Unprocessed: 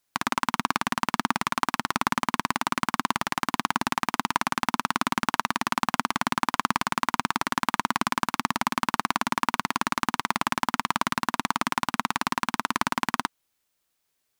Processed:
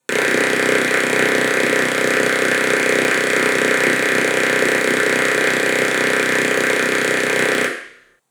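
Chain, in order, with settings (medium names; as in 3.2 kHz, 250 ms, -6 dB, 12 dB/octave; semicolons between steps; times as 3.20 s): reverberation RT60 1.0 s, pre-delay 3 ms, DRR -6 dB; speed mistake 45 rpm record played at 78 rpm; trim -2 dB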